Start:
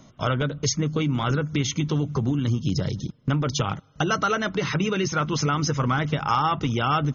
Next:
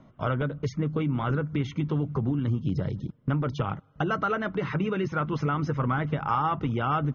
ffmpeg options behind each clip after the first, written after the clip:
-af "lowpass=1.9k,volume=-3dB"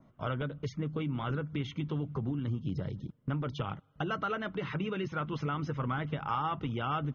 -af "adynamicequalizer=threshold=0.00251:dfrequency=3200:dqfactor=1.8:tfrequency=3200:tqfactor=1.8:attack=5:release=100:ratio=0.375:range=3.5:mode=boostabove:tftype=bell,volume=-7dB"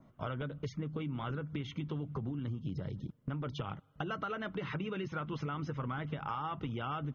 -af "acompressor=threshold=-34dB:ratio=6"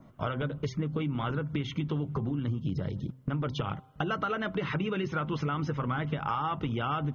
-af "bandreject=f=130:t=h:w=4,bandreject=f=260:t=h:w=4,bandreject=f=390:t=h:w=4,bandreject=f=520:t=h:w=4,bandreject=f=650:t=h:w=4,bandreject=f=780:t=h:w=4,bandreject=f=910:t=h:w=4,bandreject=f=1.04k:t=h:w=4,volume=7dB"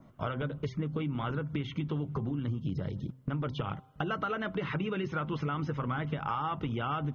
-filter_complex "[0:a]acrossover=split=4000[a][b];[b]acompressor=threshold=-58dB:ratio=4:attack=1:release=60[c];[a][c]amix=inputs=2:normalize=0,volume=-2dB"

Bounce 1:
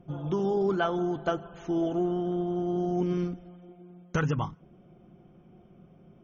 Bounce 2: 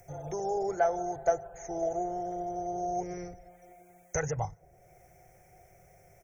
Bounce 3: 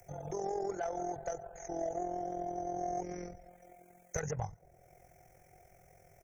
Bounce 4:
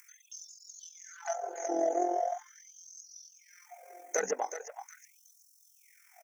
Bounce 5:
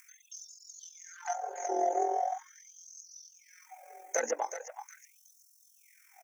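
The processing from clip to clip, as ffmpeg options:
-filter_complex "[0:a]firequalizer=gain_entry='entry(100,0);entry(220,-27);entry(450,-2);entry(750,4);entry(1100,-17);entry(2000,3);entry(3000,-26);entry(6200,11)':delay=0.05:min_phase=1,acrossover=split=170|1600[a][b][c];[c]acompressor=mode=upward:threshold=-55dB:ratio=2.5[d];[a][b][d]amix=inputs=3:normalize=0,volume=2dB"
-filter_complex "[0:a]acrossover=split=140|2600[a][b][c];[b]alimiter=level_in=1dB:limit=-24dB:level=0:latency=1:release=141,volume=-1dB[d];[a][d][c]amix=inputs=3:normalize=0,asoftclip=type=tanh:threshold=-23dB,tremolo=f=43:d=0.621"
-filter_complex "[0:a]asplit=2[a][b];[b]aecho=0:1:371|742|1113|1484:0.299|0.11|0.0409|0.0151[c];[a][c]amix=inputs=2:normalize=0,afftfilt=real='re*gte(b*sr/1024,210*pow(3800/210,0.5+0.5*sin(2*PI*0.41*pts/sr)))':imag='im*gte(b*sr/1024,210*pow(3800/210,0.5+0.5*sin(2*PI*0.41*pts/sr)))':win_size=1024:overlap=0.75,volume=7.5dB"
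-af "afreqshift=39"

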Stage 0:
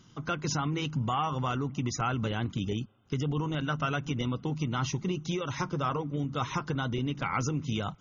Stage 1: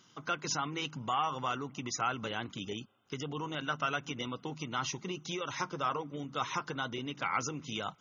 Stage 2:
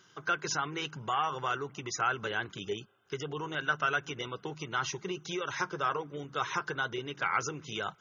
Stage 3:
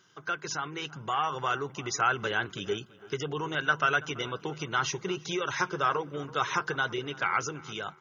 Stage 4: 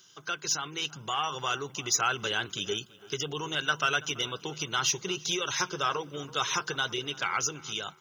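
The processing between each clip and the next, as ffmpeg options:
-af "highpass=f=600:p=1"
-af "equalizer=f=250:t=o:w=0.33:g=-11,equalizer=f=400:t=o:w=0.33:g=8,equalizer=f=1.6k:t=o:w=0.33:g=10"
-filter_complex "[0:a]dynaudnorm=f=480:g=5:m=6dB,asplit=2[a][b];[b]adelay=332,lowpass=f=2.6k:p=1,volume=-20dB,asplit=2[c][d];[d]adelay=332,lowpass=f=2.6k:p=1,volume=0.44,asplit=2[e][f];[f]adelay=332,lowpass=f=2.6k:p=1,volume=0.44[g];[a][c][e][g]amix=inputs=4:normalize=0,volume=-2dB"
-af "aexciter=amount=1.7:drive=9.6:freq=2.7k,volume=-2.5dB"

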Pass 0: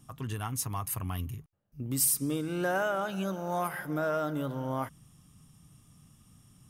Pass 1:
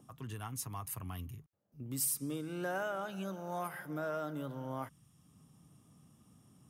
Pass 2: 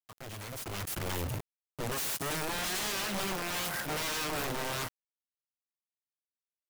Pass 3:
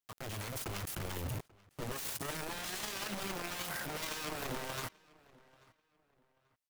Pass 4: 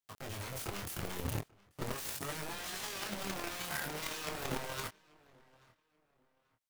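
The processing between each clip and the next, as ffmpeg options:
-filter_complex "[0:a]highpass=63,acrossover=split=200|1000|4300[a][b][c][d];[b]acompressor=mode=upward:threshold=-49dB:ratio=2.5[e];[a][e][c][d]amix=inputs=4:normalize=0,volume=-7.5dB"
-af "aeval=exprs='(mod(84.1*val(0)+1,2)-1)/84.1':c=same,acrusher=bits=7:mix=0:aa=0.000001,dynaudnorm=f=170:g=9:m=10dB"
-filter_complex "[0:a]alimiter=level_in=13.5dB:limit=-24dB:level=0:latency=1:release=13,volume=-13.5dB,asplit=2[a][b];[b]adelay=837,lowpass=f=3.3k:p=1,volume=-23dB,asplit=2[c][d];[d]adelay=837,lowpass=f=3.3k:p=1,volume=0.32[e];[a][c][e]amix=inputs=3:normalize=0,volume=3dB"
-filter_complex "[0:a]flanger=delay=20:depth=7.1:speed=0.4,asplit=2[a][b];[b]acrusher=bits=5:mix=0:aa=0.000001,volume=-5dB[c];[a][c]amix=inputs=2:normalize=0,volume=2dB"

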